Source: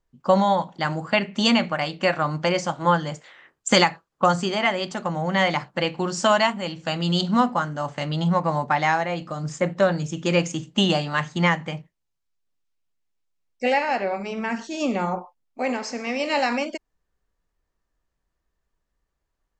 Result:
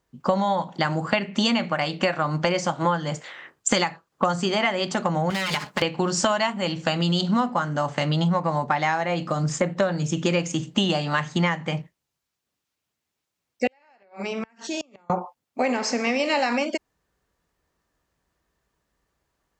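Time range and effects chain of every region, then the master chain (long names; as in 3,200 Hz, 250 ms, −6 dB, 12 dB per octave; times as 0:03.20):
0:05.30–0:05.82: lower of the sound and its delayed copy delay 4.8 ms + high-shelf EQ 3,000 Hz +10.5 dB + downward compressor, threshold −26 dBFS
0:13.67–0:15.10: low-shelf EQ 220 Hz −9.5 dB + downward compressor 3 to 1, threshold −34 dBFS + gate with flip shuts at −26 dBFS, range −31 dB
whole clip: high-pass filter 74 Hz; downward compressor 5 to 1, threshold −28 dBFS; level +8 dB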